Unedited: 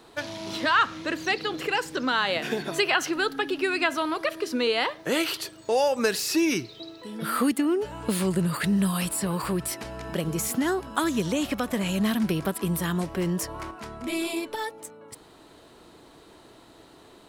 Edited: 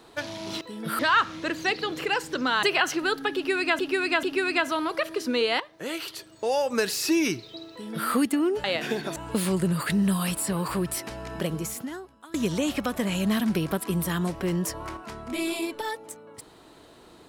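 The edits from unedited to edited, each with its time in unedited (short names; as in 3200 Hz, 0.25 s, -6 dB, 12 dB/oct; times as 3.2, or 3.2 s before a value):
2.25–2.77 move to 7.9
3.49–3.93 loop, 3 plays
4.86–6.27 fade in, from -12 dB
6.97–7.35 copy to 0.61
10.2–11.08 fade out quadratic, to -23 dB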